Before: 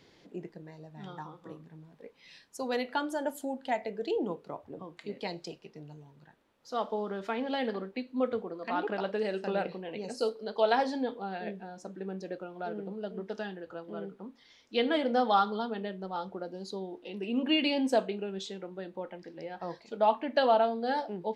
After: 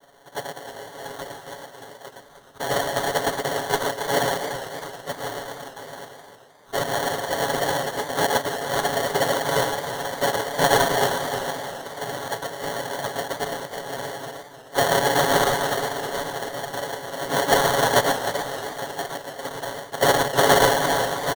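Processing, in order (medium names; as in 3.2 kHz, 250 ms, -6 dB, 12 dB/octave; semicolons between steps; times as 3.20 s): on a send: delay 113 ms -4 dB; on the sum: noise-vocoded speech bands 2; comb 7.2 ms, depth 92%; in parallel at -6 dB: hard clipper -19.5 dBFS, distortion -12 dB; on the sum: high-order bell 710 Hz +9 dB; sample-rate reducer 2.5 kHz, jitter 0%; modulated delay 308 ms, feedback 42%, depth 86 cents, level -11 dB; trim -5.5 dB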